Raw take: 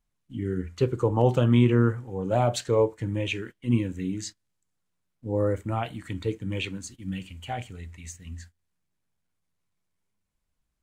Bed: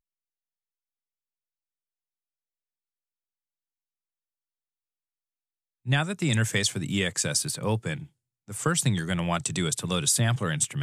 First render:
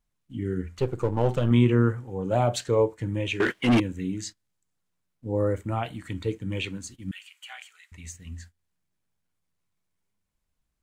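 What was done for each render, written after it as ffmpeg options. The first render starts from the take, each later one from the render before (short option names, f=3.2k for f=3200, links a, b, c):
-filter_complex "[0:a]asettb=1/sr,asplit=3[a][b][c];[a]atrim=end=0.784[d];[b]atrim=start=0.78:end=1.51,asetpts=PTS-STARTPTS,afade=t=in:d=0.004:c=qsin,afade=t=out:st=0.726:d=0.004:c=qsin,aeval=exprs='if(lt(val(0),0),0.447*val(0),val(0))':c=same[e];[c]atrim=start=1.506[f];[d][e]acrossfade=d=0.004:c1=hsin:c2=qsin[g];[g][f]acrossfade=d=0.004:c1=qsin:c2=hsin,asettb=1/sr,asplit=3[h][i][j];[h]atrim=end=3.404[k];[i]atrim=start=3.4:end=3.8,asetpts=PTS-STARTPTS,afade=t=in:d=0.004:c=qsin,afade=t=out:st=0.396:d=0.004:c=qsin,asplit=2[l][m];[m]highpass=f=720:p=1,volume=32dB,asoftclip=type=tanh:threshold=-12dB[n];[l][n]amix=inputs=2:normalize=0,lowpass=f=3k:p=1,volume=-6dB[o];[j]atrim=start=3.796[p];[k][o]acrossfade=d=0.004:c1=hsin:c2=qsin[q];[q][p]acrossfade=d=0.004:c1=qsin:c2=hsin,asettb=1/sr,asplit=3[r][s][t];[r]atrim=end=7.114[u];[s]atrim=start=7.11:end=7.92,asetpts=PTS-STARTPTS,afade=t=in:d=0.004:c=qsin,afade=t=out:st=0.806:d=0.004:c=qsin,highpass=f=1.2k:w=0.5412,highpass=f=1.2k:w=1.3066[v];[t]atrim=start=7.916[w];[u][v]acrossfade=d=0.004:c1=hsin:c2=qsin[x];[x][w]acrossfade=d=0.004:c1=qsin:c2=hsin"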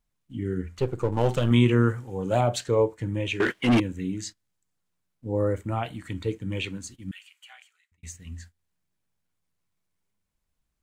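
-filter_complex "[0:a]asettb=1/sr,asplit=3[a][b][c];[a]atrim=end=1.124[d];[b]atrim=start=1.12:end=2.41,asetpts=PTS-STARTPTS,afade=t=in:d=0.004:c=qsin,afade=t=out:st=1.286:d=0.004:c=qsin,highshelf=f=2.1k:g=8[e];[c]atrim=start=2.406[f];[d][e]acrossfade=d=0.004:c1=hsin:c2=qsin[g];[g][f]acrossfade=d=0.004:c1=qsin:c2=hsin,asplit=2[h][i];[h]atrim=end=8.03,asetpts=PTS-STARTPTS,afade=t=out:st=6.87:d=1.16[j];[i]atrim=start=8.03,asetpts=PTS-STARTPTS,afade=t=in:d=0.004:c=hsin[k];[j][k]concat=n=2:v=0:a=1"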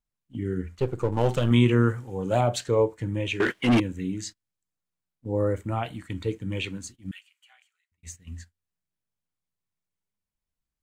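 -af "agate=range=-9dB:threshold=-41dB:ratio=16:detection=peak"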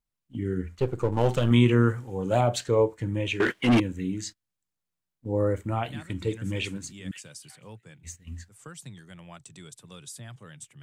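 -filter_complex "[1:a]volume=-19dB[a];[0:a][a]amix=inputs=2:normalize=0"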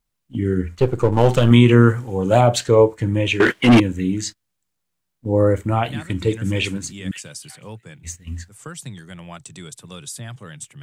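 -af "volume=9dB,alimiter=limit=-2dB:level=0:latency=1"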